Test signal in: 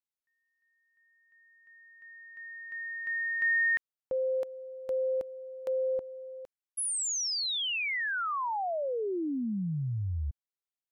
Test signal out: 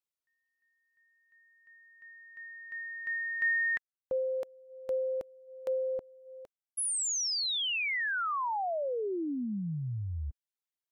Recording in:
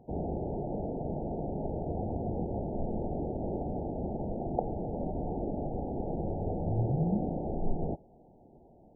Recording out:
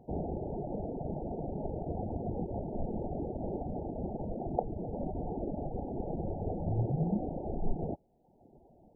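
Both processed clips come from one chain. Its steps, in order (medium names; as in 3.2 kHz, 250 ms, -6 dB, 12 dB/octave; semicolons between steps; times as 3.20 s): reverb removal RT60 0.86 s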